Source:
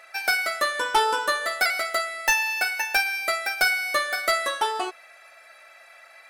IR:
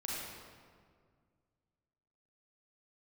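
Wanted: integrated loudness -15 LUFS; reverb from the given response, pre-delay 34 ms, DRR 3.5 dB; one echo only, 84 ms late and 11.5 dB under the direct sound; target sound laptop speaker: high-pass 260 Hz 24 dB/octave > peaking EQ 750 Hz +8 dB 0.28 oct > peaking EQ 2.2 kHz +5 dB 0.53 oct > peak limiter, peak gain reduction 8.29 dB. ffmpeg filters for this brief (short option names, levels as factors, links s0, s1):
-filter_complex "[0:a]aecho=1:1:84:0.266,asplit=2[s0][s1];[1:a]atrim=start_sample=2205,adelay=34[s2];[s1][s2]afir=irnorm=-1:irlink=0,volume=0.501[s3];[s0][s3]amix=inputs=2:normalize=0,highpass=f=260:w=0.5412,highpass=f=260:w=1.3066,equalizer=f=750:t=o:w=0.28:g=8,equalizer=f=2200:t=o:w=0.53:g=5,volume=2.24,alimiter=limit=0.422:level=0:latency=1"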